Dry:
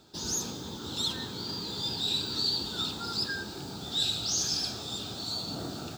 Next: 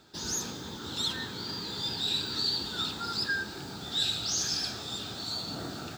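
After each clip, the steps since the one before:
parametric band 1,800 Hz +8 dB 0.98 octaves
level −1.5 dB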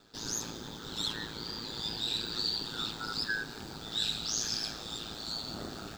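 ring modulation 55 Hz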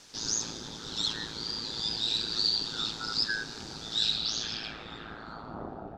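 background noise white −55 dBFS
low-pass filter sweep 5,800 Hz → 750 Hz, 0:03.98–0:05.87

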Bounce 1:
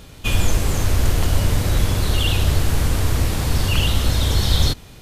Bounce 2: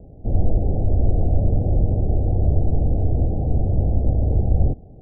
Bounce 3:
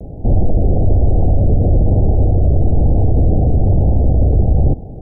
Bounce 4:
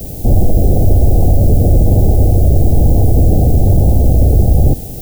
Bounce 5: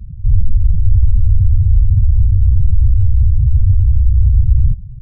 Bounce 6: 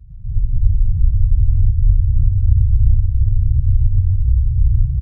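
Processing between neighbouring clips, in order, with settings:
Butterworth low-pass 780 Hz 96 dB per octave
pitch vibrato 1.1 Hz 55 cents; boost into a limiter +17 dB; level −4 dB
background noise violet −35 dBFS; level +3 dB
spectral peaks only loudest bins 4
notch comb filter 210 Hz; single-tap delay 943 ms −13.5 dB; comb and all-pass reverb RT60 1.6 s, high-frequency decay 0.55×, pre-delay 75 ms, DRR −8.5 dB; level −10 dB

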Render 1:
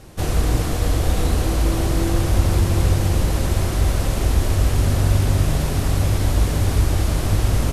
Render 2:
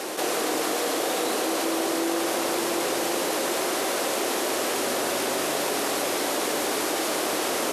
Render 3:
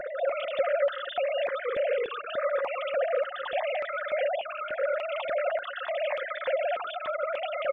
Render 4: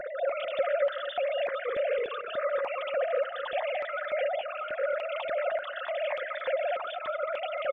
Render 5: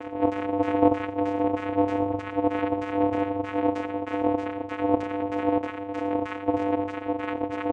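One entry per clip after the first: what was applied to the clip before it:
high-pass filter 330 Hz 24 dB per octave; envelope flattener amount 70%
three sine waves on the formant tracks; comb filter 5.6 ms, depth 30%; step-sequenced phaser 3.4 Hz 810–2,800 Hz
repeating echo 223 ms, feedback 28%, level −13.5 dB; level −1.5 dB
echo with shifted repeats 85 ms, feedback 51%, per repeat −46 Hz, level −5.5 dB; auto-filter low-pass saw down 3.2 Hz 390–2,300 Hz; channel vocoder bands 4, square 99.1 Hz; level +1 dB

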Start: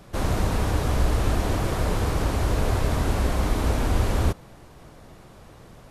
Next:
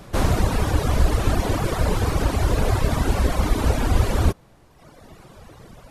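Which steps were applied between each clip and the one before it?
reverb reduction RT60 1.4 s
level +6 dB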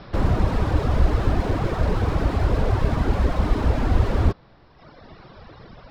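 Chebyshev low-pass with heavy ripple 5,400 Hz, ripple 3 dB
slew-rate limiting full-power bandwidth 27 Hz
level +3 dB

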